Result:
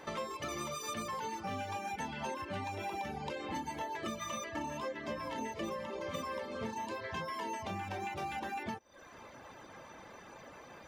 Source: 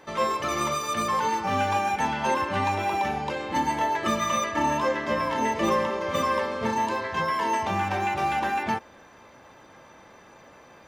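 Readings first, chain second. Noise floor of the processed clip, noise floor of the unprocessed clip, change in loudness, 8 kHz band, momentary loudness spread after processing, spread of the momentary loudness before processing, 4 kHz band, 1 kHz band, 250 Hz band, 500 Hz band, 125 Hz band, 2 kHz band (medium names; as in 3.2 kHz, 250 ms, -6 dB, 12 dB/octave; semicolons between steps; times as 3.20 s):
-54 dBFS, -52 dBFS, -13.5 dB, -10.5 dB, 13 LU, 3 LU, -11.0 dB, -15.0 dB, -12.0 dB, -12.5 dB, -11.0 dB, -13.5 dB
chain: reverb removal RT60 0.59 s; dynamic bell 1.2 kHz, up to -5 dB, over -37 dBFS, Q 0.85; compression 6:1, threshold -37 dBFS, peak gain reduction 14 dB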